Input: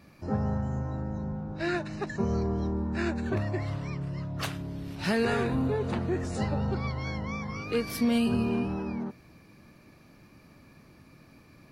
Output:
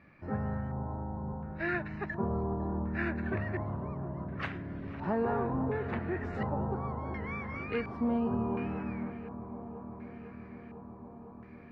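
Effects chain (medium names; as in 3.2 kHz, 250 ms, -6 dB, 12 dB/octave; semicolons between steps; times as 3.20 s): feedback echo behind a low-pass 502 ms, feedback 80%, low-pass 1.4 kHz, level -12 dB; LFO low-pass square 0.7 Hz 980–2000 Hz; trim -5.5 dB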